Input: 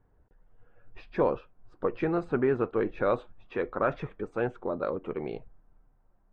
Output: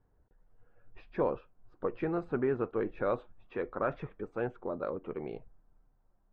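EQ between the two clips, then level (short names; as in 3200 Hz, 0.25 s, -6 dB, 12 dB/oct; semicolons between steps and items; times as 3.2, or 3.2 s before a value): LPF 2900 Hz 6 dB/oct; -4.5 dB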